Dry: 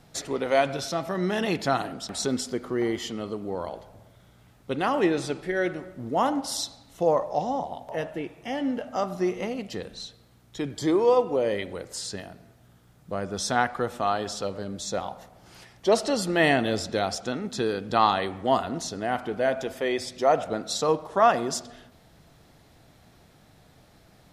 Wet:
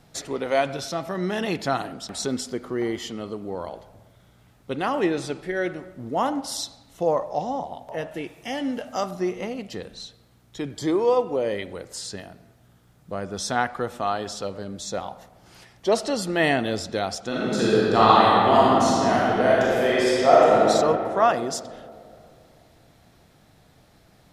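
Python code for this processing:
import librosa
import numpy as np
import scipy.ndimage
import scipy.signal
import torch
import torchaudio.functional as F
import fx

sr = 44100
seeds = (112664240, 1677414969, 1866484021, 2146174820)

y = fx.high_shelf(x, sr, hz=3000.0, db=9.5, at=(8.11, 9.11))
y = fx.reverb_throw(y, sr, start_s=17.27, length_s=3.39, rt60_s=2.8, drr_db=-7.5)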